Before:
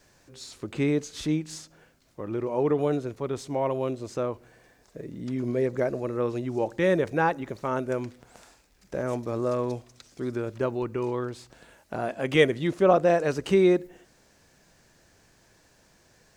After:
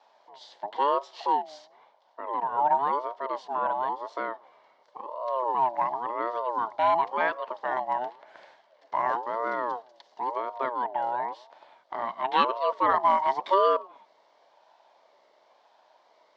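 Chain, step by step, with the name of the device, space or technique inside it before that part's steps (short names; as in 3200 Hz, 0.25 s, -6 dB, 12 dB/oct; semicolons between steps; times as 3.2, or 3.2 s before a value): 8.01–9.17 bell 1100 Hz +7.5 dB 2.2 oct; voice changer toy (ring modulator with a swept carrier 640 Hz, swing 30%, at 0.95 Hz; speaker cabinet 560–4100 Hz, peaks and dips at 620 Hz +8 dB, 930 Hz +6 dB, 1300 Hz -7 dB, 2500 Hz -10 dB); gain +2.5 dB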